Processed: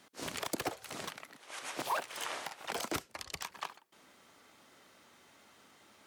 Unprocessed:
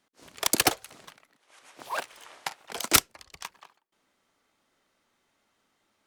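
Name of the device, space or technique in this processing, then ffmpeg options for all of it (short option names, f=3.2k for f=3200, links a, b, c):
podcast mastering chain: -af "highpass=69,deesser=0.85,acompressor=threshold=-42dB:ratio=4,alimiter=level_in=11.5dB:limit=-24dB:level=0:latency=1:release=173,volume=-11.5dB,volume=12dB" -ar 44100 -c:a libmp3lame -b:a 96k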